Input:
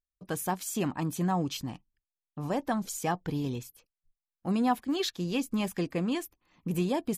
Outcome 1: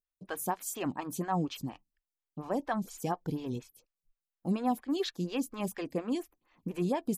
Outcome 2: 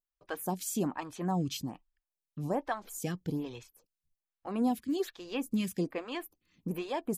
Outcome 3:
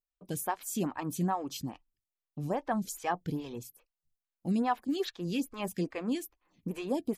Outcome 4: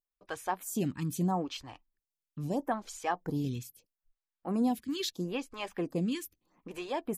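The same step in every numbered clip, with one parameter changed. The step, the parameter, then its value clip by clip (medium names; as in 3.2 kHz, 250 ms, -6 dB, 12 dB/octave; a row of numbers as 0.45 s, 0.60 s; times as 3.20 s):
lamp-driven phase shifter, rate: 4.2 Hz, 1.2 Hz, 2.4 Hz, 0.77 Hz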